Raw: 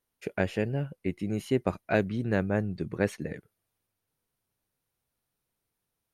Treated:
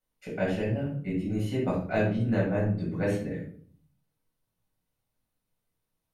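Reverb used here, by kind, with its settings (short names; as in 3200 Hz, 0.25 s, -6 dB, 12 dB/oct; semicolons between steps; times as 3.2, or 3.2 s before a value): shoebox room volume 560 m³, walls furnished, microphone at 7.2 m; gain -10.5 dB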